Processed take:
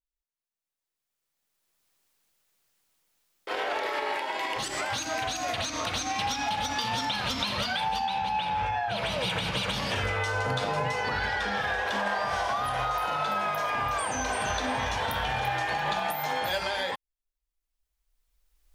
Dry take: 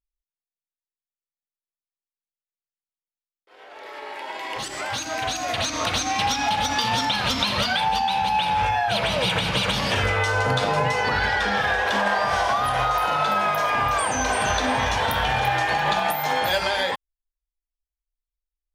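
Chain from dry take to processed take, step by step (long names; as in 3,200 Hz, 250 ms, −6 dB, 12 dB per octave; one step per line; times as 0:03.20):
camcorder AGC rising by 16 dB per second
0:08.05–0:08.97: high-shelf EQ 9,000 Hz → 4,500 Hz −11 dB
level −7 dB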